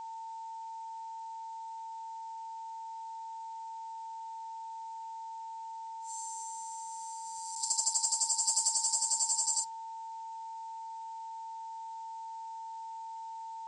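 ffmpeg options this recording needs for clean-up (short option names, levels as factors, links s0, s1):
-af "bandreject=f=900:w=30,afftdn=nr=30:nf=-43"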